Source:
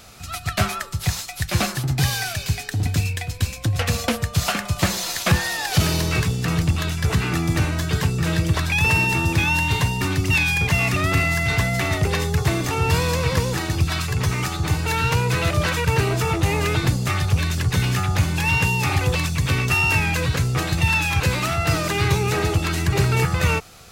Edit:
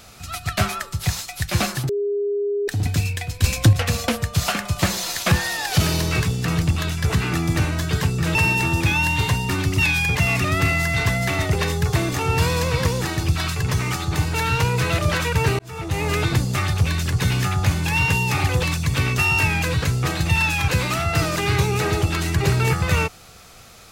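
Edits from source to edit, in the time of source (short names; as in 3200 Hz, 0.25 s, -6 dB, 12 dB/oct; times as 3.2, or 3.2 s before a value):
1.89–2.68 bleep 407 Hz -19.5 dBFS
3.44–3.73 gain +8.5 dB
8.35–8.87 cut
16.11–16.66 fade in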